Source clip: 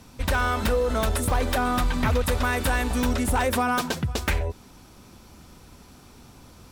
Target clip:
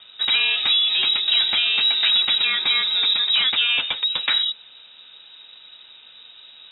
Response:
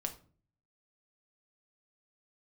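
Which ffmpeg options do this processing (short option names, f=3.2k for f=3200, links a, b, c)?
-filter_complex "[0:a]asettb=1/sr,asplit=3[a][b][c];[a]atrim=end=2.434[d];[b]atrim=start=2.43:end=3.36,asetpts=PTS-STARTPTS,afade=t=in:d=0.004:c=qsin,afade=t=out:st=0.926:d=0.004:c=qsin,asuperstop=centerf=970:order=4:qfactor=3.1[e];[c]atrim=start=3.356[f];[d][e]acrossfade=d=0.004:c1=hsin:c2=qsin[g];[g][f]acrossfade=d=0.004:c1=qsin:c2=hsin,lowpass=f=3.3k:t=q:w=0.5098,lowpass=f=3.3k:t=q:w=0.6013,lowpass=f=3.3k:t=q:w=0.9,lowpass=f=3.3k:t=q:w=2.563,afreqshift=-3900,volume=3.5dB"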